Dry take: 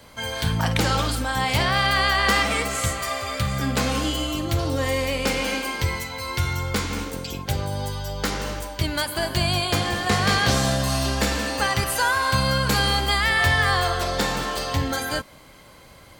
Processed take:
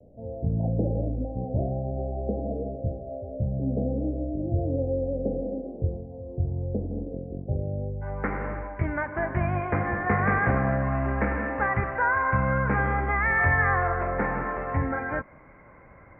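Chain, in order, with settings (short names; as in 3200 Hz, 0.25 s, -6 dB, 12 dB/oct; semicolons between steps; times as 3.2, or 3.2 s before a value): steep low-pass 690 Hz 72 dB/oct, from 8.01 s 2200 Hz; vibrato 0.47 Hz 8.6 cents; gain -2 dB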